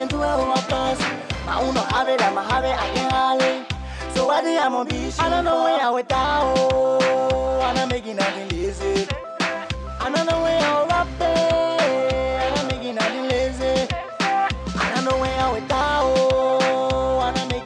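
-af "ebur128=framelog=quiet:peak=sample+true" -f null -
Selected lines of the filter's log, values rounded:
Integrated loudness:
  I:         -20.9 LUFS
  Threshold: -30.9 LUFS
Loudness range:
  LRA:         2.5 LU
  Threshold: -40.9 LUFS
  LRA low:   -22.2 LUFS
  LRA high:  -19.7 LUFS
Sample peak:
  Peak:       -6.3 dBFS
True peak:
  Peak:       -6.3 dBFS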